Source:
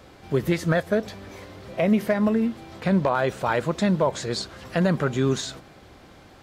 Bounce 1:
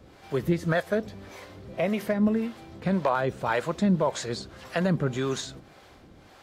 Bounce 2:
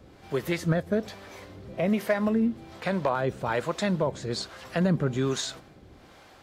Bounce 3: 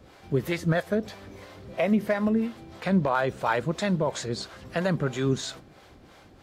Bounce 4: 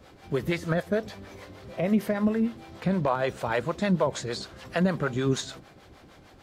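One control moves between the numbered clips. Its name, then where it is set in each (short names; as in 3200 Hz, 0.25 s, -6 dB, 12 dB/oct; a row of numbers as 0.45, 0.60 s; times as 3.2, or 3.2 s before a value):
harmonic tremolo, rate: 1.8, 1.2, 3, 6.6 Hz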